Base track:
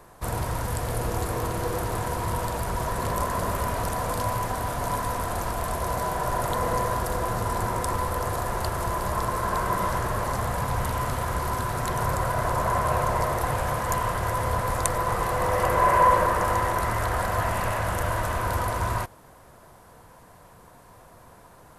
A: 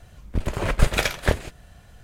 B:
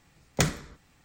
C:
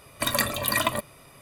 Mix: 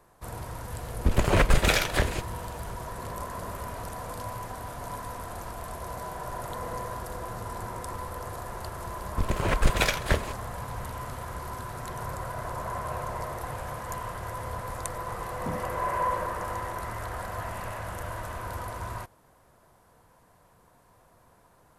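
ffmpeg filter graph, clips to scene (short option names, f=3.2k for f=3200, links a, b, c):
-filter_complex "[1:a]asplit=2[a][b];[0:a]volume=-9.5dB[c];[a]alimiter=level_in=13.5dB:limit=-1dB:release=50:level=0:latency=1[d];[b]asoftclip=type=tanh:threshold=-10.5dB[e];[2:a]bandpass=f=230:t=q:w=2.8:csg=0[f];[d]atrim=end=2.03,asetpts=PTS-STARTPTS,volume=-9dB,afade=t=in:d=0.004:c=hsin,afade=t=out:st=2.026:d=0.004:c=hsin,adelay=710[g];[e]atrim=end=2.03,asetpts=PTS-STARTPTS,volume=-1dB,afade=t=in:d=0.004:c=hsin,afade=t=out:st=2.026:d=0.004:c=hsin,adelay=8830[h];[f]atrim=end=1.04,asetpts=PTS-STARTPTS,volume=-1.5dB,afade=t=in:d=0.004:c=hsin,afade=t=out:st=1.036:d=0.004:c=hsin,adelay=15070[i];[c][g][h][i]amix=inputs=4:normalize=0"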